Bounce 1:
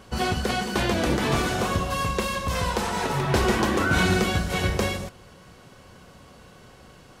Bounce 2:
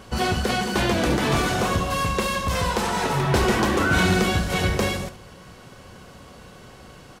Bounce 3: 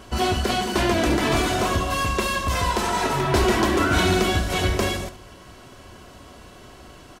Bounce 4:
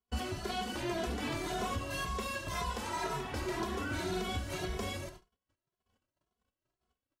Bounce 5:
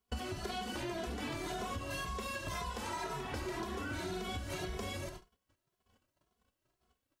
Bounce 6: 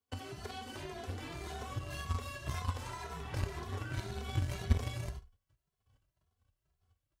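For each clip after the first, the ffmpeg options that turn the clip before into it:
-filter_complex "[0:a]asplit=2[s0][s1];[s1]asoftclip=type=tanh:threshold=0.0398,volume=0.631[s2];[s0][s2]amix=inputs=2:normalize=0,aecho=1:1:71:0.2"
-af "aecho=1:1:3:0.46"
-filter_complex "[0:a]agate=range=0.0112:threshold=0.0112:ratio=16:detection=peak,alimiter=limit=0.15:level=0:latency=1:release=301,asplit=2[s0][s1];[s1]adelay=2.4,afreqshift=1.9[s2];[s0][s2]amix=inputs=2:normalize=1,volume=0.422"
-af "acompressor=threshold=0.00708:ratio=6,volume=2"
-af "asubboost=boost=6.5:cutoff=93,afreqshift=25,aeval=exprs='0.1*(cos(1*acos(clip(val(0)/0.1,-1,1)))-cos(1*PI/2))+0.0251*(cos(3*acos(clip(val(0)/0.1,-1,1)))-cos(3*PI/2))':c=same,volume=2"

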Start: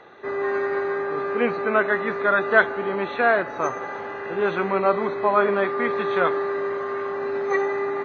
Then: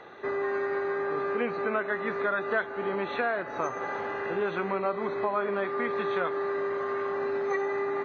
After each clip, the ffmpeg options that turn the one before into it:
-af "acompressor=threshold=0.0398:ratio=3"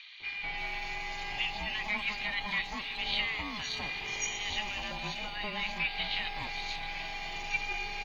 -filter_complex "[0:a]aeval=exprs='val(0)*sin(2*PI*420*n/s)':c=same,aexciter=amount=13.9:drive=8:freq=2400,acrossover=split=1300|4300[s0][s1][s2];[s0]adelay=200[s3];[s2]adelay=580[s4];[s3][s1][s4]amix=inputs=3:normalize=0,volume=0.447"

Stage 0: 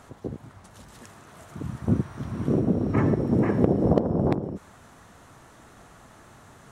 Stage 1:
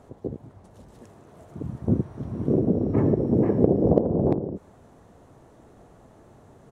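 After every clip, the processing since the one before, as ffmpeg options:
-af "firequalizer=gain_entry='entry(210,0);entry(430,4);entry(1300,-11)':delay=0.05:min_phase=1"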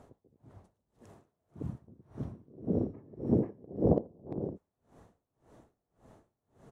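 -af "aeval=exprs='val(0)*pow(10,-32*(0.5-0.5*cos(2*PI*1.8*n/s))/20)':c=same,volume=0.631"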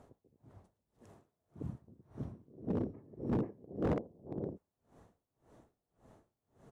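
-af "volume=16.8,asoftclip=hard,volume=0.0596,volume=0.668"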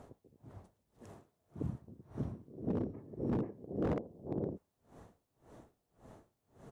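-af "acompressor=threshold=0.0126:ratio=4,volume=1.88"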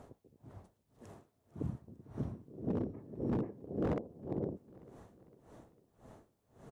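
-af "aecho=1:1:451|902|1353|1804:0.0891|0.0463|0.0241|0.0125"

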